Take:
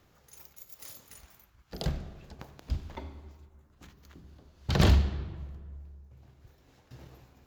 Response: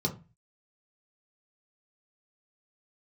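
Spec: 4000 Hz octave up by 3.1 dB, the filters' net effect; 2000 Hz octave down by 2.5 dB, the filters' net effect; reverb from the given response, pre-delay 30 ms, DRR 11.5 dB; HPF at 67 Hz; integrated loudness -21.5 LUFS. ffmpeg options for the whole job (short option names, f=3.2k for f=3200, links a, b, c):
-filter_complex "[0:a]highpass=67,equalizer=f=2k:t=o:g=-4.5,equalizer=f=4k:t=o:g=5,asplit=2[a][b];[1:a]atrim=start_sample=2205,adelay=30[c];[b][c]afir=irnorm=-1:irlink=0,volume=-17.5dB[d];[a][d]amix=inputs=2:normalize=0,volume=8.5dB"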